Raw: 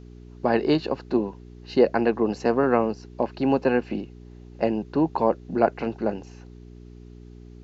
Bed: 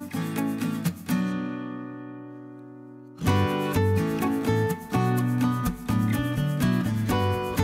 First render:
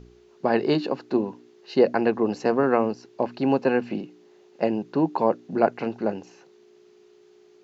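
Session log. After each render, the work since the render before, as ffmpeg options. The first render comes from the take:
-af "bandreject=f=60:t=h:w=4,bandreject=f=120:t=h:w=4,bandreject=f=180:t=h:w=4,bandreject=f=240:t=h:w=4,bandreject=f=300:t=h:w=4"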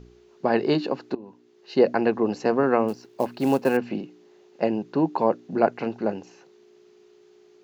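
-filter_complex "[0:a]asettb=1/sr,asplit=3[a][b][c];[a]atrim=end=2.884[d];[b]atrim=start=2.88:end=3.77,asetpts=PTS-STARTPTS,afade=t=in:d=0.004:c=qsin,afade=t=out:st=0.886:d=0.004:c=qsin,acrusher=bits=6:mode=log:mix=0:aa=0.000001[e];[c]atrim=start=3.766[f];[d][e]acrossfade=d=0.004:c1=hsin:c2=qsin[g];[g][f]acrossfade=d=0.004:c1=qsin:c2=hsin,asplit=2[h][i];[h]atrim=end=1.15,asetpts=PTS-STARTPTS,afade=t=out:st=1.146:d=0.004:c=hsin:silence=0.0707946[j];[i]atrim=start=1.15,asetpts=PTS-STARTPTS,afade=t=in:d=0.66:silence=0.0707946[k];[j][k]concat=n=2:v=0:a=1"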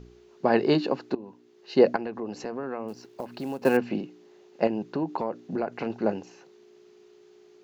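-filter_complex "[0:a]asettb=1/sr,asplit=3[a][b][c];[a]atrim=end=1.964[d];[b]atrim=start=1.96:end=3.62,asetpts=PTS-STARTPTS,afade=t=in:d=0.004:c=qsin,afade=t=out:st=1.656:d=0.004:c=qsin,acompressor=threshold=-33dB:ratio=3:attack=3.2:release=140:knee=1:detection=peak[e];[c]atrim=start=3.616[f];[d][e]acrossfade=d=0.004:c1=hsin:c2=qsin[g];[g][f]acrossfade=d=0.004:c1=qsin:c2=hsin,asettb=1/sr,asplit=3[h][i][j];[h]atrim=end=4.674[k];[i]atrim=start=4.67:end=5.9,asetpts=PTS-STARTPTS,afade=t=in:d=0.004:c=qsin,afade=t=out:st=1.226:d=0.004:c=qsin,acompressor=threshold=-24dB:ratio=6:attack=3.2:release=140:knee=1:detection=peak[l];[j]atrim=start=5.896[m];[k][l]acrossfade=d=0.004:c1=hsin:c2=qsin[n];[n][m]acrossfade=d=0.004:c1=qsin:c2=hsin"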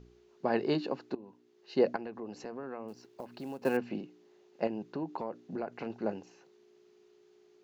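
-af "volume=-8dB"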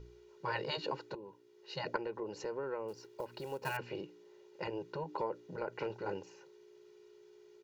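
-af "afftfilt=real='re*lt(hypot(re,im),0.112)':imag='im*lt(hypot(re,im),0.112)':win_size=1024:overlap=0.75,aecho=1:1:2.1:0.78"

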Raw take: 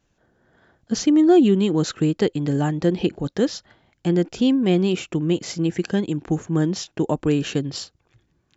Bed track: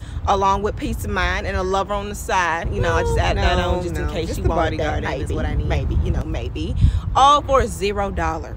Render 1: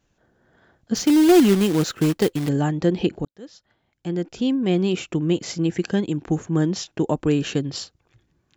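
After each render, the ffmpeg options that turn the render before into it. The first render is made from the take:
-filter_complex "[0:a]asettb=1/sr,asplit=3[a][b][c];[a]atrim=end=0.954[d];[b]atrim=start=0.95:end=2.49,asetpts=PTS-STARTPTS,afade=t=in:d=0.004:c=qsin,afade=t=out:st=1.536:d=0.004:c=qsin,acrusher=bits=3:mode=log:mix=0:aa=0.000001[e];[c]atrim=start=2.486[f];[d][e]acrossfade=d=0.004:c1=hsin:c2=qsin[g];[g][f]acrossfade=d=0.004:c1=qsin:c2=hsin,asplit=2[h][i];[h]atrim=end=3.25,asetpts=PTS-STARTPTS,afade=t=out:st=3.246:d=0.004:c=hsin[j];[i]atrim=start=3.25,asetpts=PTS-STARTPTS,afade=t=in:d=1.83[k];[j][k]concat=n=2:v=0:a=1"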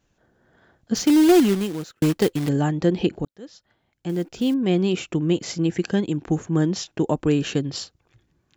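-filter_complex "[0:a]asettb=1/sr,asplit=3[a][b][c];[a]atrim=end=4.094[d];[b]atrim=start=4.09:end=4.54,asetpts=PTS-STARTPTS,afade=t=in:d=0.004:c=qsin,afade=t=out:st=0.446:d=0.004:c=qsin,acrusher=bits=7:mode=log:mix=0:aa=0.000001[e];[c]atrim=start=4.536[f];[d][e]acrossfade=d=0.004:c1=hsin:c2=qsin[g];[g][f]acrossfade=d=0.004:c1=qsin:c2=hsin,asplit=2[h][i];[h]atrim=end=2.02,asetpts=PTS-STARTPTS,afade=t=out:st=1.25:d=0.77[j];[i]atrim=start=2.02,asetpts=PTS-STARTPTS,afade=t=in:d=0.004:c=hsin[k];[j][k]concat=n=2:v=0:a=1"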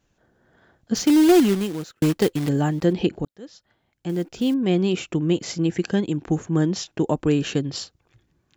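-filter_complex "[0:a]asettb=1/sr,asplit=3[a][b][c];[a]atrim=end=2.484[d];[b]atrim=start=2.48:end=2.93,asetpts=PTS-STARTPTS,afade=t=in:d=0.004:c=qsin,afade=t=out:st=0.446:d=0.004:c=qsin,aeval=exprs='val(0)*gte(abs(val(0)),0.00708)':c=same[e];[c]atrim=start=2.926[f];[d][e]acrossfade=d=0.004:c1=hsin:c2=qsin[g];[g][f]acrossfade=d=0.004:c1=qsin:c2=hsin"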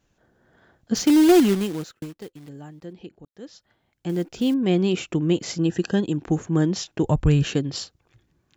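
-filter_complex "[0:a]asettb=1/sr,asplit=3[a][b][c];[a]atrim=end=5.574[d];[b]atrim=start=5.57:end=6.16,asetpts=PTS-STARTPTS,afade=t=in:d=0.004:c=qsin,afade=t=out:st=0.586:d=0.004:c=qsin,asuperstop=centerf=2200:order=8:qfactor=5.2[e];[c]atrim=start=6.156[f];[d][e]acrossfade=d=0.004:c1=hsin:c2=qsin[g];[g][f]acrossfade=d=0.004:c1=qsin:c2=hsin,asplit=3[h][i][j];[h]afade=t=out:st=7.03:d=0.02[k];[i]asubboost=boost=12:cutoff=90,afade=t=in:st=7.03:d=0.02,afade=t=out:st=7.43:d=0.02[l];[j]afade=t=in:st=7.43:d=0.02[m];[k][l][m]amix=inputs=3:normalize=0,asplit=3[n][o][p];[n]atrim=end=2.3,asetpts=PTS-STARTPTS,afade=t=out:st=1.97:d=0.33:c=exp:silence=0.112202[q];[o]atrim=start=2.3:end=3.04,asetpts=PTS-STARTPTS,volume=-19dB[r];[p]atrim=start=3.04,asetpts=PTS-STARTPTS,afade=t=in:d=0.33:c=exp:silence=0.112202[s];[q][r][s]concat=n=3:v=0:a=1"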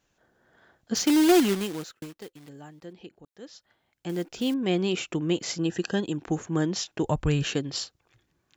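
-af "lowshelf=f=370:g=-8.5"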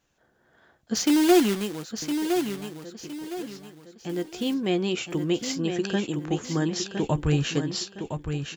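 -filter_complex "[0:a]asplit=2[a][b];[b]adelay=14,volume=-12.5dB[c];[a][c]amix=inputs=2:normalize=0,asplit=2[d][e];[e]aecho=0:1:1012|2024|3036|4048:0.447|0.152|0.0516|0.0176[f];[d][f]amix=inputs=2:normalize=0"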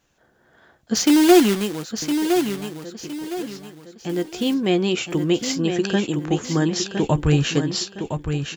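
-af "volume=5.5dB"

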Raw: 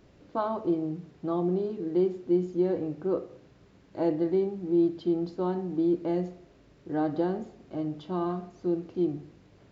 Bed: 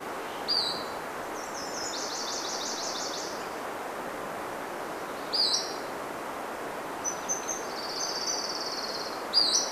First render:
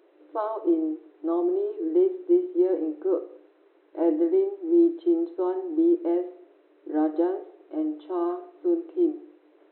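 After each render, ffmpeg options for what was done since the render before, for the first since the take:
-af "afftfilt=real='re*between(b*sr/4096,300,4100)':imag='im*between(b*sr/4096,300,4100)':win_size=4096:overlap=0.75,aemphasis=mode=reproduction:type=riaa"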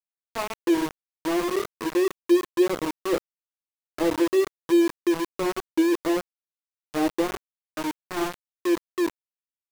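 -af "aphaser=in_gain=1:out_gain=1:delay=3.6:decay=0.25:speed=1.9:type=triangular,aeval=exprs='val(0)*gte(abs(val(0)),0.0631)':c=same"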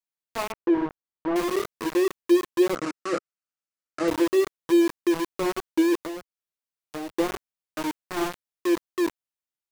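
-filter_complex "[0:a]asettb=1/sr,asplit=3[a][b][c];[a]atrim=end=0.524[d];[b]atrim=start=0.52:end=1.36,asetpts=PTS-STARTPTS,afade=t=in:d=0.004:c=qsin,afade=t=out:st=0.836:d=0.004:c=qsin,lowpass=1.5k[e];[c]atrim=start=1.356[f];[d][e]acrossfade=d=0.004:c1=hsin:c2=qsin[g];[g][f]acrossfade=d=0.004:c1=qsin:c2=hsin,asettb=1/sr,asplit=3[h][i][j];[h]atrim=end=2.754[k];[i]atrim=start=2.75:end=4.08,asetpts=PTS-STARTPTS,afade=t=in:d=0.004:c=qsin,afade=t=out:st=1.326:d=0.004:c=qsin,highpass=130,equalizer=f=410:t=q:w=4:g=-7,equalizer=f=930:t=q:w=4:g=-10,equalizer=f=1.3k:t=q:w=4:g=8,equalizer=f=3.4k:t=q:w=4:g=-8,lowpass=f=8.3k:w=0.5412,lowpass=f=8.3k:w=1.3066[l];[j]atrim=start=4.076[m];[k][l]acrossfade=d=0.004:c1=hsin:c2=qsin[n];[n][m]acrossfade=d=0.004:c1=qsin:c2=hsin,asettb=1/sr,asplit=3[o][p][q];[o]atrim=end=5.964[r];[p]atrim=start=5.96:end=7.17,asetpts=PTS-STARTPTS,afade=t=in:d=0.004:c=qsin,afade=t=out:st=1.206:d=0.004:c=qsin,acrossover=split=89|2400[s][t][u];[s]acompressor=threshold=-57dB:ratio=4[v];[t]acompressor=threshold=-34dB:ratio=4[w];[u]acompressor=threshold=-46dB:ratio=4[x];[v][w][x]amix=inputs=3:normalize=0[y];[q]atrim=start=7.166[z];[r][y]acrossfade=d=0.004:c1=hsin:c2=qsin[aa];[aa][z]acrossfade=d=0.004:c1=qsin:c2=hsin"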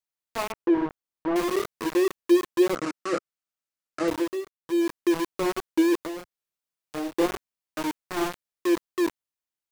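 -filter_complex "[0:a]asettb=1/sr,asplit=3[a][b][c];[a]atrim=end=6.164[d];[b]atrim=start=6.16:end=7.26,asetpts=PTS-STARTPTS,afade=t=in:d=0.004:c=qsin,afade=t=out:st=1.096:d=0.004:c=qsin,asplit=2[e][f];[f]adelay=29,volume=-3.5dB[g];[e][g]amix=inputs=2:normalize=0,atrim=end_sample=48510[h];[c]atrim=start=7.256[i];[d][h]acrossfade=d=0.004:c1=hsin:c2=qsin[j];[j][i]acrossfade=d=0.004:c1=qsin:c2=hsin,asplit=3[k][l][m];[k]atrim=end=4.48,asetpts=PTS-STARTPTS,afade=t=out:st=4:d=0.48:silence=0.11885[n];[l]atrim=start=4.48:end=4.54,asetpts=PTS-STARTPTS,volume=-18.5dB[o];[m]atrim=start=4.54,asetpts=PTS-STARTPTS,afade=t=in:d=0.48:silence=0.11885[p];[n][o][p]concat=n=3:v=0:a=1"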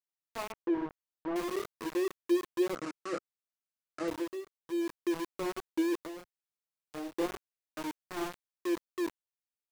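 -af "volume=-9dB"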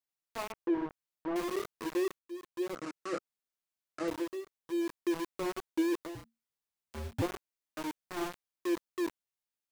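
-filter_complex "[0:a]asettb=1/sr,asplit=3[a][b][c];[a]atrim=end=6.154[d];[b]atrim=start=6.15:end=7.22,asetpts=PTS-STARTPTS,afade=t=in:d=0.004:c=qsin,afade=t=out:st=1.066:d=0.004:c=qsin,afreqshift=-230[e];[c]atrim=start=7.216[f];[d][e]acrossfade=d=0.004:c1=hsin:c2=qsin[g];[g][f]acrossfade=d=0.004:c1=qsin:c2=hsin,asplit=2[h][i];[h]atrim=end=2.19,asetpts=PTS-STARTPTS,afade=t=out:st=2.186:d=0.004:c=hsin[j];[i]atrim=start=2.19,asetpts=PTS-STARTPTS,afade=t=in:d=0.83[k];[j][k]concat=n=2:v=0:a=1"

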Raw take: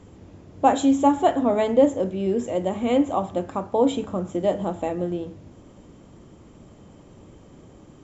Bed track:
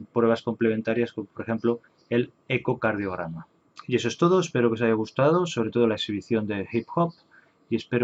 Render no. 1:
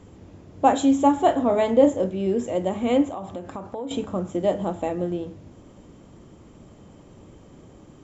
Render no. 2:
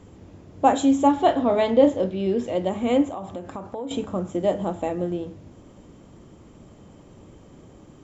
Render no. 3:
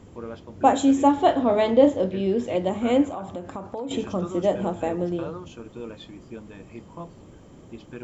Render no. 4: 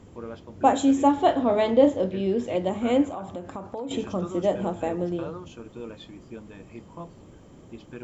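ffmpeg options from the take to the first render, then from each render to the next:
-filter_complex "[0:a]asettb=1/sr,asplit=3[a][b][c];[a]atrim=end=1.204[d];[b]atrim=start=1.2:end=2.06,asetpts=PTS-STARTPTS,afade=t=in:d=0.004:c=qsin,afade=t=out:st=0.856:d=0.004:c=qsin,asplit=2[e][f];[f]adelay=31,volume=-9.5dB[g];[e][g]amix=inputs=2:normalize=0,atrim=end_sample=37926[h];[c]atrim=start=2.056[i];[d][h]acrossfade=d=0.004:c1=hsin:c2=qsin[j];[j][i]acrossfade=d=0.004:c1=qsin:c2=hsin,asettb=1/sr,asplit=3[k][l][m];[k]atrim=end=3.074[n];[l]atrim=start=3.07:end=3.91,asetpts=PTS-STARTPTS,afade=t=in:d=0.004:c=qsin,afade=t=out:st=0.836:d=0.004:c=qsin,acompressor=threshold=-29dB:ratio=6:attack=3.2:release=140:knee=1:detection=peak[o];[m]atrim=start=3.906[p];[n][o]acrossfade=d=0.004:c1=hsin:c2=qsin[q];[q][p]acrossfade=d=0.004:c1=qsin:c2=hsin"
-filter_complex "[0:a]asettb=1/sr,asplit=3[a][b][c];[a]atrim=end=1.084[d];[b]atrim=start=1.08:end=2.69,asetpts=PTS-STARTPTS,afade=t=in:d=0.004:c=qsin,afade=t=out:st=1.606:d=0.004:c=qsin,lowpass=f=4.4k:t=q:w=1.8[e];[c]atrim=start=2.686[f];[d][e]acrossfade=d=0.004:c1=hsin:c2=qsin[g];[g][f]acrossfade=d=0.004:c1=qsin:c2=hsin"
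-filter_complex "[1:a]volume=-15.5dB[a];[0:a][a]amix=inputs=2:normalize=0"
-af "volume=-1.5dB"

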